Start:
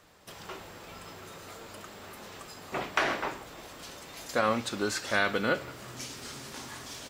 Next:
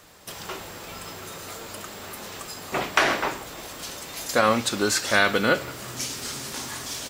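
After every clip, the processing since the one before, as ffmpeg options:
ffmpeg -i in.wav -af "highshelf=frequency=5100:gain=7.5,volume=6.5dB" out.wav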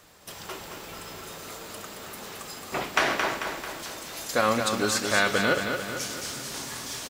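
ffmpeg -i in.wav -af "aecho=1:1:221|442|663|884|1105|1326|1547:0.501|0.271|0.146|0.0789|0.0426|0.023|0.0124,volume=-3.5dB" out.wav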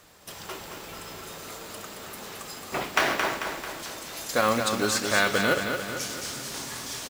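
ffmpeg -i in.wav -af "acrusher=bits=4:mode=log:mix=0:aa=0.000001" out.wav

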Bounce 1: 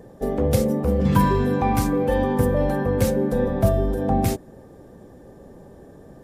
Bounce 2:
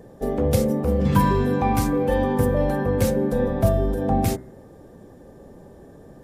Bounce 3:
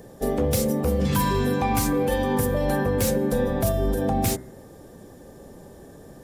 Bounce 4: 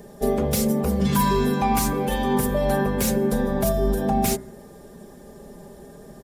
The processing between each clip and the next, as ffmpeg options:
ffmpeg -i in.wav -af "bandreject=frequency=64.05:width_type=h:width=4,bandreject=frequency=128.1:width_type=h:width=4,bandreject=frequency=192.15:width_type=h:width=4,bandreject=frequency=256.2:width_type=h:width=4,bandreject=frequency=320.25:width_type=h:width=4,bandreject=frequency=384.3:width_type=h:width=4,bandreject=frequency=448.35:width_type=h:width=4,bandreject=frequency=512.4:width_type=h:width=4,bandreject=frequency=576.45:width_type=h:width=4,bandreject=frequency=640.5:width_type=h:width=4,bandreject=frequency=704.55:width_type=h:width=4,bandreject=frequency=768.6:width_type=h:width=4,bandreject=frequency=832.65:width_type=h:width=4,bandreject=frequency=896.7:width_type=h:width=4,bandreject=frequency=960.75:width_type=h:width=4,bandreject=frequency=1024.8:width_type=h:width=4,bandreject=frequency=1088.85:width_type=h:width=4,bandreject=frequency=1152.9:width_type=h:width=4,bandreject=frequency=1216.95:width_type=h:width=4,bandreject=frequency=1281:width_type=h:width=4,bandreject=frequency=1345.05:width_type=h:width=4,bandreject=frequency=1409.1:width_type=h:width=4,bandreject=frequency=1473.15:width_type=h:width=4,bandreject=frequency=1537.2:width_type=h:width=4,bandreject=frequency=1601.25:width_type=h:width=4,bandreject=frequency=1665.3:width_type=h:width=4,bandreject=frequency=1729.35:width_type=h:width=4,bandreject=frequency=1793.4:width_type=h:width=4,bandreject=frequency=1857.45:width_type=h:width=4,bandreject=frequency=1921.5:width_type=h:width=4,bandreject=frequency=1985.55:width_type=h:width=4,bandreject=frequency=2049.6:width_type=h:width=4,bandreject=frequency=2113.65:width_type=h:width=4" out.wav
ffmpeg -i in.wav -filter_complex "[0:a]highshelf=frequency=2600:gain=10.5,acrossover=split=2900[link_01][link_02];[link_01]alimiter=limit=-14dB:level=0:latency=1:release=130[link_03];[link_02]asoftclip=type=tanh:threshold=-24.5dB[link_04];[link_03][link_04]amix=inputs=2:normalize=0" out.wav
ffmpeg -i in.wav -af "aecho=1:1:4.9:0.66" out.wav

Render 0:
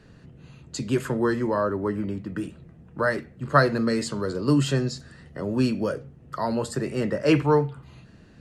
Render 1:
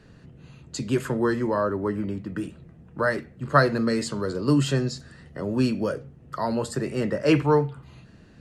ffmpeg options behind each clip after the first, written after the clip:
ffmpeg -i in.wav -af anull out.wav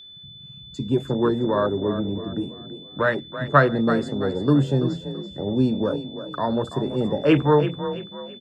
ffmpeg -i in.wav -filter_complex "[0:a]afwtdn=0.0355,asplit=5[link_01][link_02][link_03][link_04][link_05];[link_02]adelay=333,afreqshift=31,volume=-11dB[link_06];[link_03]adelay=666,afreqshift=62,volume=-19.9dB[link_07];[link_04]adelay=999,afreqshift=93,volume=-28.7dB[link_08];[link_05]adelay=1332,afreqshift=124,volume=-37.6dB[link_09];[link_01][link_06][link_07][link_08][link_09]amix=inputs=5:normalize=0,aeval=exprs='val(0)+0.00631*sin(2*PI*3500*n/s)':channel_layout=same,volume=2.5dB" out.wav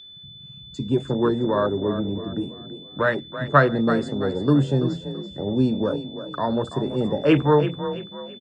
ffmpeg -i in.wav -af "aresample=22050,aresample=44100" out.wav

